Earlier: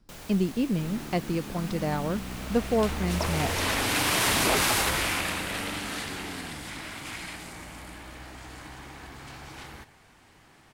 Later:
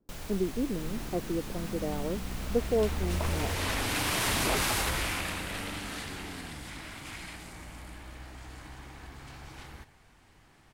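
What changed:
speech: add resonant band-pass 410 Hz, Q 1.8
second sound −5.0 dB
master: add low-shelf EQ 77 Hz +11 dB

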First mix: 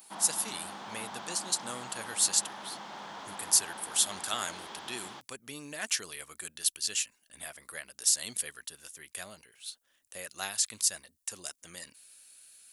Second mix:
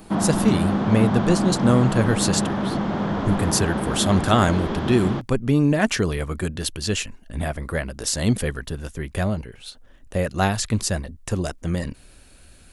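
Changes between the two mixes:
background: add parametric band 870 Hz −8 dB 0.47 octaves
master: remove first difference

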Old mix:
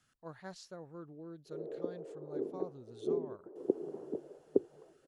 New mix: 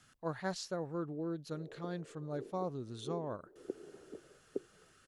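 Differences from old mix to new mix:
speech +9.5 dB
background −10.5 dB

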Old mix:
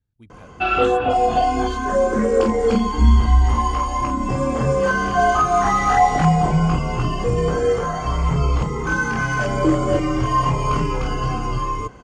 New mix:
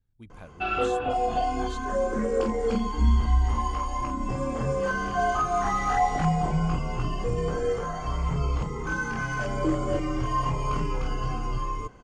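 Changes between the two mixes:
background −8.5 dB
master: remove high-pass filter 41 Hz

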